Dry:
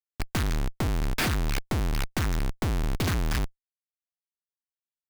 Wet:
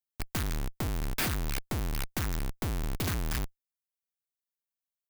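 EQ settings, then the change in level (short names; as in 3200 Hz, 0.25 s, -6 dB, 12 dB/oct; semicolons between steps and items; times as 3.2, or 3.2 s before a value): high shelf 9500 Hz +11 dB; -5.5 dB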